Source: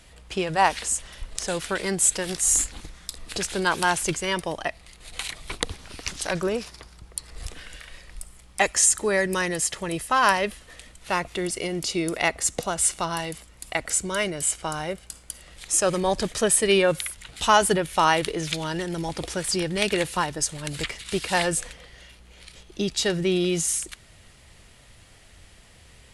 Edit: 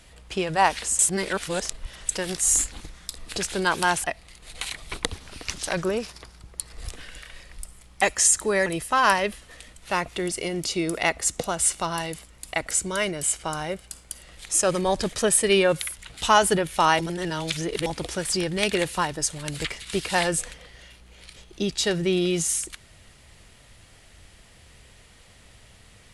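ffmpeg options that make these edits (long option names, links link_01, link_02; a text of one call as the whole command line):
ffmpeg -i in.wav -filter_complex "[0:a]asplit=7[link_01][link_02][link_03][link_04][link_05][link_06][link_07];[link_01]atrim=end=0.992[link_08];[link_02]atrim=start=0.988:end=2.092,asetpts=PTS-STARTPTS,areverse[link_09];[link_03]atrim=start=2.088:end=4.042[link_10];[link_04]atrim=start=4.618:end=9.242[link_11];[link_05]atrim=start=9.848:end=18.182[link_12];[link_06]atrim=start=18.178:end=19.052,asetpts=PTS-STARTPTS,areverse[link_13];[link_07]atrim=start=19.048[link_14];[link_08][link_09]acrossfade=duration=0.004:curve1=hsin:curve2=hsin[link_15];[link_15][link_10]acrossfade=duration=0.004:curve1=hsin:curve2=hsin[link_16];[link_16][link_11]acrossfade=duration=0.004:curve1=hsin:curve2=hsin[link_17];[link_17][link_12]acrossfade=duration=0.004:curve1=hsin:curve2=hsin[link_18];[link_18][link_13]acrossfade=duration=0.004:curve1=hsin:curve2=hsin[link_19];[link_19][link_14]acrossfade=duration=0.004:curve1=hsin:curve2=hsin" out.wav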